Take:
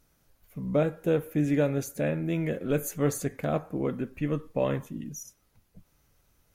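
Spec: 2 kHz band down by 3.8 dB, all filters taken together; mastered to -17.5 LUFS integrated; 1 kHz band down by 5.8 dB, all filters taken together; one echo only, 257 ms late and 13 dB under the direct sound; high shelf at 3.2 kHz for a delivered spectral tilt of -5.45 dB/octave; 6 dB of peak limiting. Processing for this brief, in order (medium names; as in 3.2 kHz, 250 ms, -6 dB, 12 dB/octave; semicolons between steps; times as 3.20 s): peaking EQ 1 kHz -8.5 dB; peaking EQ 2 kHz -4 dB; treble shelf 3.2 kHz +5 dB; peak limiter -20 dBFS; delay 257 ms -13 dB; trim +14 dB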